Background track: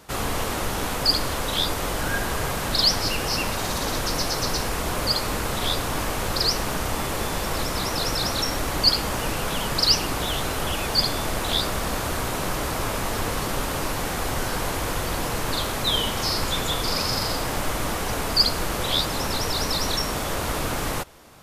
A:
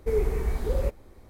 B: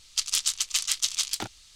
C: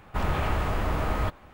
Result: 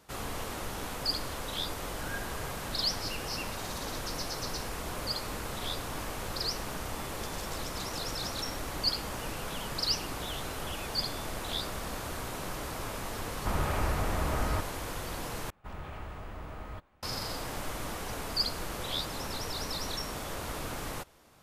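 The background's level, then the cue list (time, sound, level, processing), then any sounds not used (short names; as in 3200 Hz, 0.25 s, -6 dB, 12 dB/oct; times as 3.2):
background track -11 dB
7.06 add B -10.5 dB + compressor, threshold -33 dBFS
13.31 add C -4 dB + LPF 3000 Hz
15.5 replace with C -15.5 dB
not used: A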